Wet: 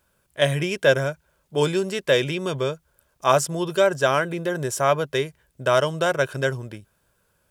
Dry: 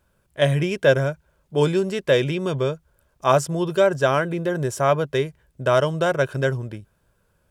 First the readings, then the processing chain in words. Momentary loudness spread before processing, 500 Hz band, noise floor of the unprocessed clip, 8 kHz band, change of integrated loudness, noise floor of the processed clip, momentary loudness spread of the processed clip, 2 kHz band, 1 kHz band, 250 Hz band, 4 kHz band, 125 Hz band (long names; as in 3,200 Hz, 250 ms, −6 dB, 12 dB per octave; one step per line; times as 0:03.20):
10 LU, −1.5 dB, −67 dBFS, +4.5 dB, −1.0 dB, −68 dBFS, 10 LU, +1.0 dB, 0.0 dB, −3.0 dB, +2.5 dB, −4.0 dB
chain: spectral tilt +1.5 dB per octave